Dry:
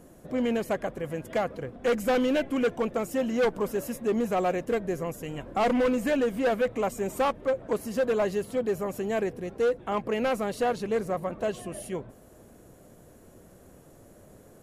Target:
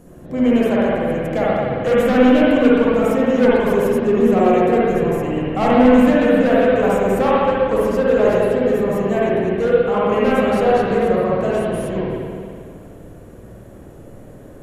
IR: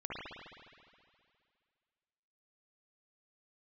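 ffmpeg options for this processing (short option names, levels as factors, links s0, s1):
-filter_complex "[0:a]lowshelf=f=280:g=6[s0];[1:a]atrim=start_sample=2205[s1];[s0][s1]afir=irnorm=-1:irlink=0,volume=2.37"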